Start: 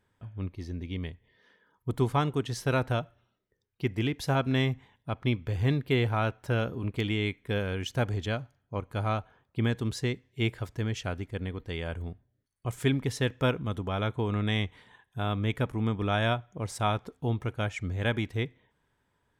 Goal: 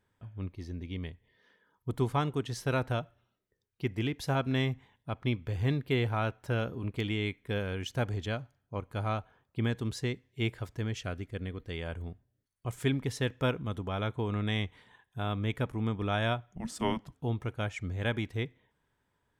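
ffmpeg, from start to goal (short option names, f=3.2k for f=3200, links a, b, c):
-filter_complex "[0:a]asettb=1/sr,asplit=3[a][b][c];[a]atrim=end=11.004[d];[b]atrim=start=11:end=11.73,asetpts=PTS-STARTPTS,afade=t=in:d=0.004:c=qsin,afade=t=out:st=0.726:d=0.004:c=qsin,equalizer=f=880:t=o:w=0.2:g=-12.5[e];[c]atrim=start=11.726[f];[d][e]acrossfade=d=0.004:c1=hsin:c2=qsin[g];[g][f]acrossfade=d=0.004:c1=qsin:c2=hsin,asplit=3[h][i][j];[h]afade=t=out:st=16.54:d=0.02[k];[i]afreqshift=-330,afade=t=in:st=16.54:d=0.02,afade=t=out:st=17.14:d=0.02[l];[j]afade=t=in:st=17.14:d=0.02[m];[k][l][m]amix=inputs=3:normalize=0,volume=-3dB"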